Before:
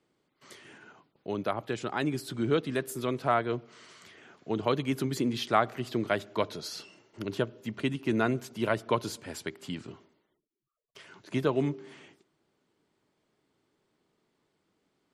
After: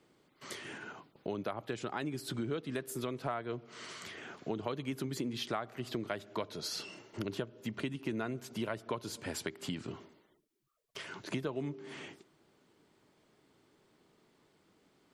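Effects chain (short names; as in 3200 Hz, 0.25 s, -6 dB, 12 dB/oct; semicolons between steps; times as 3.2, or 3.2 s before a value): compressor 5:1, threshold -42 dBFS, peak gain reduction 21 dB; gain +6.5 dB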